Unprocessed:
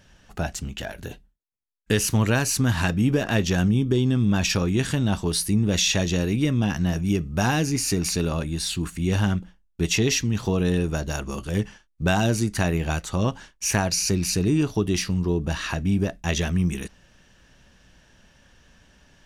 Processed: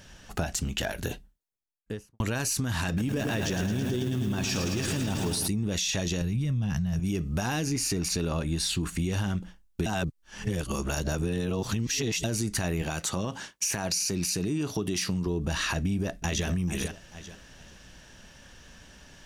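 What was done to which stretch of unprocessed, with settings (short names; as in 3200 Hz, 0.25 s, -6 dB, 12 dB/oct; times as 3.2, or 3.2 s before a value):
1.08–2.2 studio fade out
2.87–5.48 lo-fi delay 0.109 s, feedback 80%, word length 7-bit, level -7 dB
6.21–7 resonant low shelf 220 Hz +9.5 dB, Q 1.5
7.64–8.99 high shelf 5100 Hz -6 dB
9.86–12.24 reverse
12.82–15.27 HPF 110 Hz
15.78–16.47 echo throw 0.44 s, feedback 25%, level -13.5 dB
whole clip: tone controls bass -1 dB, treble +4 dB; limiter -19 dBFS; compressor, threshold -30 dBFS; gain +4.5 dB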